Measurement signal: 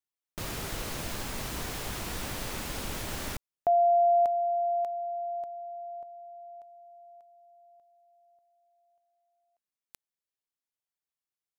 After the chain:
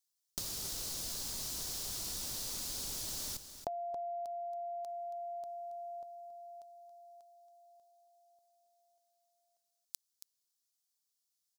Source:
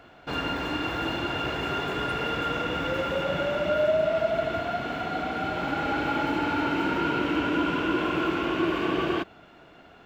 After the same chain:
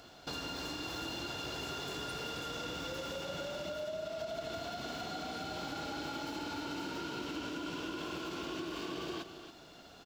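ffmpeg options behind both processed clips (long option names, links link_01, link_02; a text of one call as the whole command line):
ffmpeg -i in.wav -filter_complex "[0:a]highshelf=frequency=3300:width_type=q:width=1.5:gain=13,acompressor=threshold=-38dB:ratio=5:attack=25:release=85:knee=1:detection=peak,asplit=2[link_01][link_02];[link_02]aecho=0:1:276:0.282[link_03];[link_01][link_03]amix=inputs=2:normalize=0,volume=-4dB" out.wav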